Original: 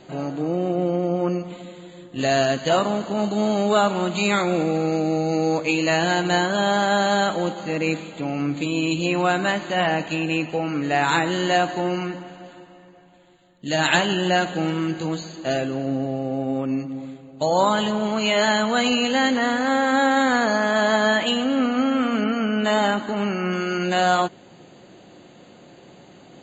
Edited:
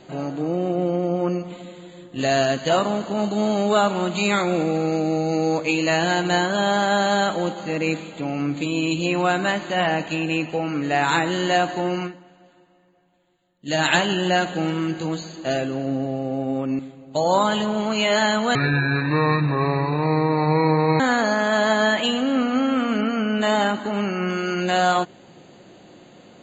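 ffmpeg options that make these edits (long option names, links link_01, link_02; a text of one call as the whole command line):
ffmpeg -i in.wav -filter_complex "[0:a]asplit=6[link_01][link_02][link_03][link_04][link_05][link_06];[link_01]atrim=end=12.4,asetpts=PTS-STARTPTS,afade=type=out:start_time=12.06:duration=0.34:curve=exp:silence=0.266073[link_07];[link_02]atrim=start=12.4:end=13.35,asetpts=PTS-STARTPTS,volume=-11.5dB[link_08];[link_03]atrim=start=13.35:end=16.792,asetpts=PTS-STARTPTS,afade=type=in:duration=0.34:curve=exp:silence=0.266073[link_09];[link_04]atrim=start=17.048:end=18.814[link_10];[link_05]atrim=start=18.81:end=20.23,asetpts=PTS-STARTPTS,asetrate=25578,aresample=44100[link_11];[link_06]atrim=start=20.226[link_12];[link_07][link_08][link_09]concat=n=3:v=0:a=1[link_13];[link_13][link_10]acrossfade=duration=0.004:curve1=hsin:curve2=hsin[link_14];[link_14][link_11]acrossfade=duration=0.004:curve1=hsin:curve2=hsin[link_15];[link_15][link_12]acrossfade=duration=0.004:curve1=hsin:curve2=hsin" out.wav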